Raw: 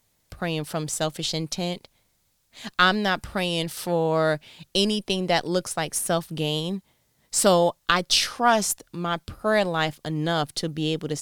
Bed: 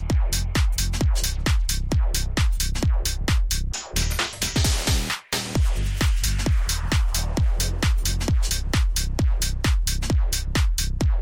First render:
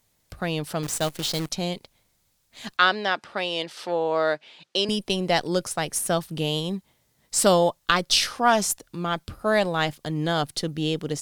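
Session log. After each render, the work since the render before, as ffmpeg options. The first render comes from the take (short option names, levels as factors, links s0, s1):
-filter_complex "[0:a]asettb=1/sr,asplit=3[s0][s1][s2];[s0]atrim=end=0.834[s3];[s1]atrim=start=0.83:end=1.5,asetpts=PTS-STARTPTS,afade=t=in:d=0.004:c=qsin,afade=t=out:st=0.666:d=0.004:c=qsin,acrusher=bits=6:dc=4:mix=0:aa=0.000001[s4];[s2]atrim=start=1.496[s5];[s3][s4]acrossfade=d=0.004:c1=hsin:c2=qsin[s6];[s6][s5]acrossfade=d=0.004:c1=qsin:c2=hsin,asettb=1/sr,asplit=3[s7][s8][s9];[s7]atrim=end=2.774[s10];[s8]atrim=start=2.77:end=4.89,asetpts=PTS-STARTPTS,afade=t=in:d=0.004:c=qsin,afade=t=out:st=2.116:d=0.004:c=qsin,highpass=360,lowpass=4900[s11];[s9]atrim=start=4.886[s12];[s10][s11]acrossfade=d=0.004:c1=hsin:c2=qsin[s13];[s13][s12]acrossfade=d=0.004:c1=qsin:c2=hsin"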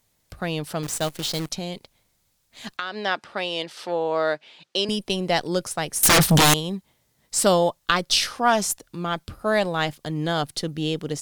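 -filter_complex "[0:a]asettb=1/sr,asplit=3[s0][s1][s2];[s0]atrim=end=1.534[s3];[s1]atrim=start=1.53:end=3.01,asetpts=PTS-STARTPTS,afade=t=in:d=0.004:c=qsin,afade=t=out:st=1.476:d=0.004:c=qsin,acompressor=threshold=0.0562:ratio=6:attack=3.2:release=140:knee=1:detection=peak[s4];[s2]atrim=start=3.006[s5];[s3][s4]acrossfade=d=0.004:c1=hsin:c2=qsin[s6];[s6][s5]acrossfade=d=0.004:c1=qsin:c2=hsin,asettb=1/sr,asplit=3[s7][s8][s9];[s7]atrim=end=6.034[s10];[s8]atrim=start=6.03:end=6.54,asetpts=PTS-STARTPTS,afade=t=in:d=0.004:c=qsin,afade=t=out:st=0.506:d=0.004:c=qsin,aeval=exprs='0.266*sin(PI/2*8.91*val(0)/0.266)':c=same[s11];[s9]atrim=start=6.536[s12];[s10][s11]acrossfade=d=0.004:c1=hsin:c2=qsin[s13];[s13][s12]acrossfade=d=0.004:c1=qsin:c2=hsin"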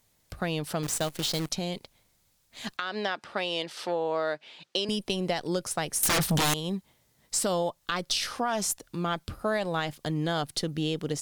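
-af "alimiter=limit=0.237:level=0:latency=1:release=150,acompressor=threshold=0.0501:ratio=3"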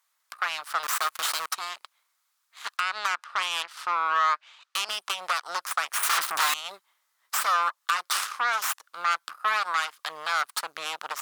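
-af "aeval=exprs='0.237*(cos(1*acos(clip(val(0)/0.237,-1,1)))-cos(1*PI/2))+0.0376*(cos(3*acos(clip(val(0)/0.237,-1,1)))-cos(3*PI/2))+0.0531*(cos(8*acos(clip(val(0)/0.237,-1,1)))-cos(8*PI/2))':c=same,highpass=f=1200:t=q:w=3.5"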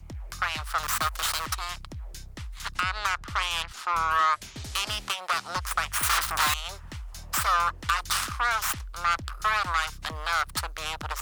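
-filter_complex "[1:a]volume=0.126[s0];[0:a][s0]amix=inputs=2:normalize=0"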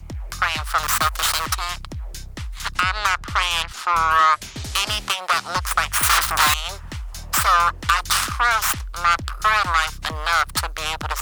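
-af "volume=2.37"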